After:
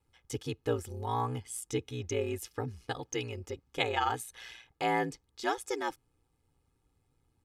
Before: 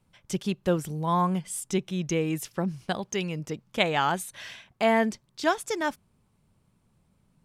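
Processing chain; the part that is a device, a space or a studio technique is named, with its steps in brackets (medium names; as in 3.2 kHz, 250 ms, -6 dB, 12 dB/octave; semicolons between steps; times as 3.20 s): ring-modulated robot voice (ring modulator 59 Hz; comb 2.4 ms, depth 76%); trim -5 dB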